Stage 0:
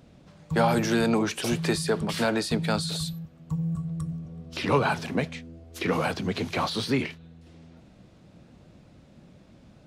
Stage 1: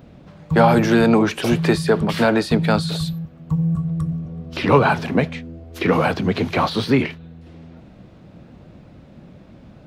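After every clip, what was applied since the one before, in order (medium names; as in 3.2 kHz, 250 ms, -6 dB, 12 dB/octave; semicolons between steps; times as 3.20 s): peaking EQ 8.2 kHz -11 dB 1.9 oct; trim +9 dB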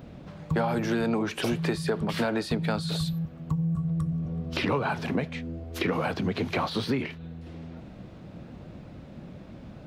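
compression 4:1, threshold -26 dBFS, peak gain reduction 15 dB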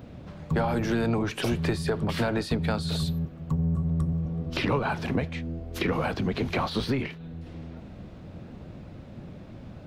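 octave divider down 1 oct, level -4 dB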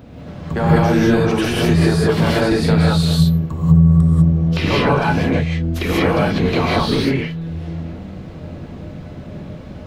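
gated-style reverb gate 220 ms rising, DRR -6 dB; trim +4 dB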